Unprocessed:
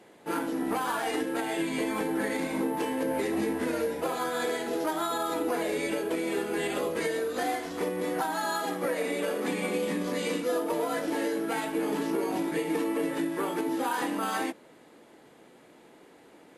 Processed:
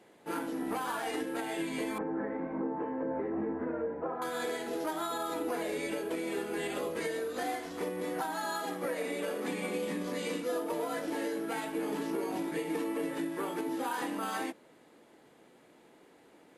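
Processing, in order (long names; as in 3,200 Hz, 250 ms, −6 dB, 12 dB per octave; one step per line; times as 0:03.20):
0:01.98–0:04.22: low-pass filter 1,500 Hz 24 dB per octave
level −5 dB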